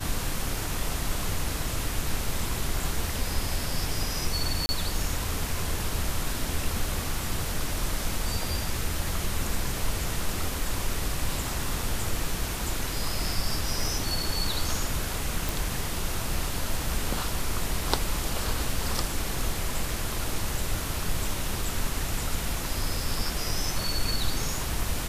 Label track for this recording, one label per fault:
4.660000	4.690000	gap 30 ms
15.490000	15.490000	pop

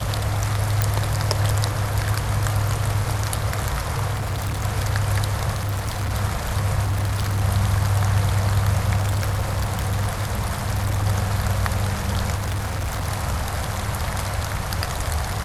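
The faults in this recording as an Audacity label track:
0.820000	0.820000	pop
4.130000	4.650000	clipped -21.5 dBFS
5.530000	6.120000	clipped -21 dBFS
6.820000	7.420000	clipped -18.5 dBFS
8.960000	11.070000	clipped -18 dBFS
12.350000	13.070000	clipped -21.5 dBFS

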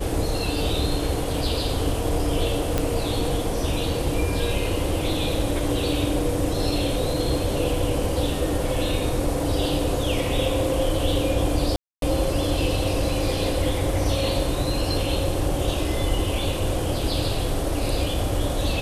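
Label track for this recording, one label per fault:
2.780000	2.780000	pop -8 dBFS
11.760000	12.020000	gap 0.262 s

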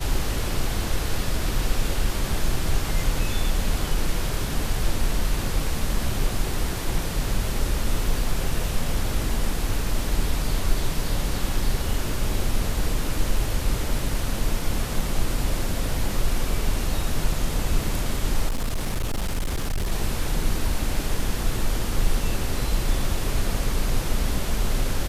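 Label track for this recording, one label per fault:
18.480000	19.920000	clipped -21 dBFS

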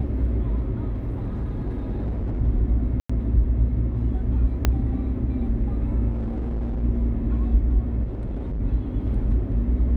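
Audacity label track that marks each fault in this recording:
0.920000	2.420000	clipped -23 dBFS
3.000000	3.100000	gap 95 ms
4.650000	4.650000	pop -6 dBFS
6.100000	6.840000	clipped -23.5 dBFS
8.030000	8.610000	clipped -25 dBFS

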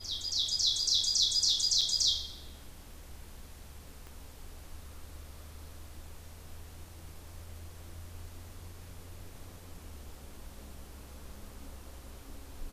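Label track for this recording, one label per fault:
1.810000	1.820000	gap 5.4 ms
4.070000	4.070000	pop

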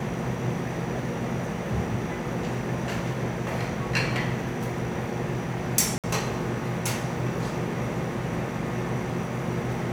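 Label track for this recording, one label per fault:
5.980000	6.040000	gap 57 ms

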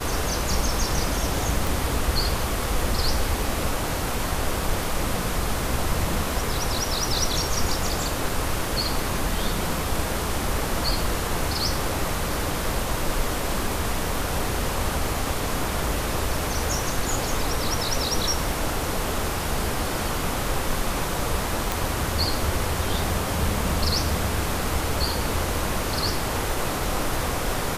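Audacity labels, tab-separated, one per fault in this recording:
1.670000	1.670000	pop
21.720000	21.720000	pop

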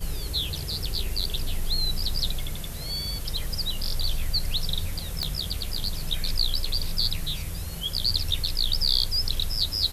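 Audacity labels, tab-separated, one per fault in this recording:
5.230000	5.230000	pop -12 dBFS

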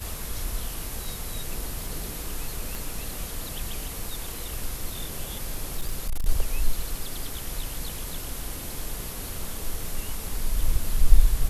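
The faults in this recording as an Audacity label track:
2.750000	2.750000	pop
5.770000	6.290000	clipped -21.5 dBFS

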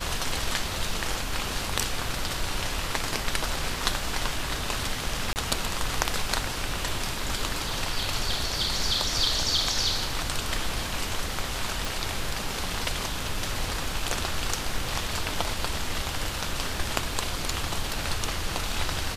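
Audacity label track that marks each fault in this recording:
5.330000	5.360000	gap 29 ms
11.850000	11.850000	pop

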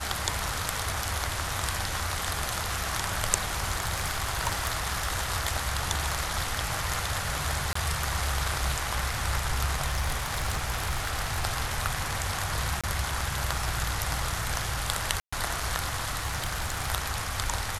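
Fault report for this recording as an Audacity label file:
3.680000	5.100000	clipped -20.5 dBFS
7.730000	7.750000	gap 24 ms
9.860000	11.440000	clipped -23 dBFS
12.810000	12.840000	gap 26 ms
15.200000	15.320000	gap 0.125 s
16.180000	16.900000	clipped -24 dBFS

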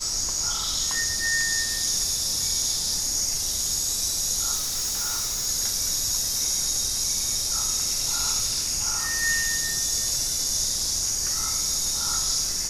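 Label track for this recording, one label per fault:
4.550000	5.470000	clipped -23.5 dBFS

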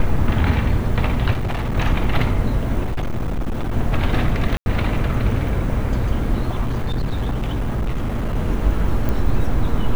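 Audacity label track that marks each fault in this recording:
1.330000	1.750000	clipped -18.5 dBFS
2.840000	3.730000	clipped -18.5 dBFS
4.570000	4.660000	gap 91 ms
6.610000	8.370000	clipped -17.5 dBFS
9.090000	9.090000	pop -10 dBFS

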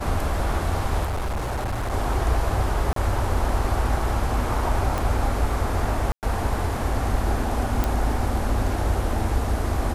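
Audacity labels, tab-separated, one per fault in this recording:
1.040000	1.930000	clipped -23 dBFS
2.930000	2.960000	gap 33 ms
4.980000	4.980000	pop
6.120000	6.230000	gap 0.108 s
7.840000	7.840000	pop

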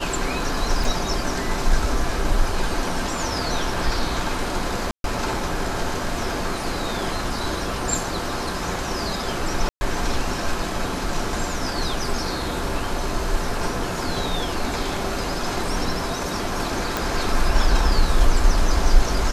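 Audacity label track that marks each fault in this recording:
0.840000	0.840000	gap 3.8 ms
4.910000	5.040000	gap 0.132 s
9.690000	9.810000	gap 0.12 s
16.970000	16.970000	pop

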